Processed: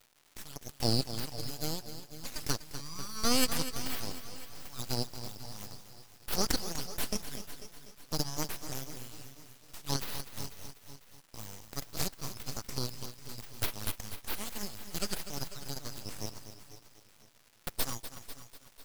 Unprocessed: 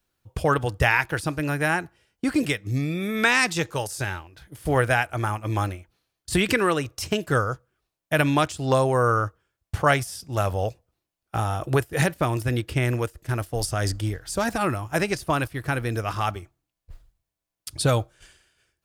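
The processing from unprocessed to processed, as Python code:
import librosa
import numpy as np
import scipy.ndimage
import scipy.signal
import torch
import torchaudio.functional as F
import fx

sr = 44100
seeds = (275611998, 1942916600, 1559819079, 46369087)

p1 = scipy.signal.sosfilt(scipy.signal.butter(8, 2100.0, 'highpass', fs=sr, output='sos'), x)
p2 = fx.dmg_crackle(p1, sr, seeds[0], per_s=410.0, level_db=-48.0)
p3 = np.abs(p2)
p4 = p3 + fx.echo_feedback(p3, sr, ms=499, feedback_pct=42, wet_db=-17, dry=0)
y = fx.echo_crushed(p4, sr, ms=246, feedback_pct=55, bits=8, wet_db=-11.5)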